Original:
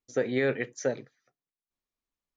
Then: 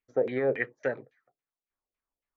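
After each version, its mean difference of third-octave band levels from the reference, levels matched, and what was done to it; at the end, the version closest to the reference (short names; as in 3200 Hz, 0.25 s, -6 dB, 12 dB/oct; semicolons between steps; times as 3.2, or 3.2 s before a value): 4.5 dB: high shelf 6100 Hz +10 dB; LFO low-pass saw down 3.6 Hz 450–2600 Hz; bell 190 Hz -4.5 dB 1.4 oct; gain -1.5 dB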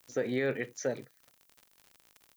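3.5 dB: added noise violet -68 dBFS; crackle 73/s -40 dBFS; in parallel at +1.5 dB: limiter -23 dBFS, peak gain reduction 7.5 dB; on the sum: gain -8 dB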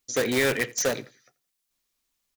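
10.5 dB: high shelf 2100 Hz +12 dB; in parallel at -3 dB: wrapped overs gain 24.5 dB; on the sum: feedback echo 84 ms, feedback 32%, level -22.5 dB; gain +1 dB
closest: second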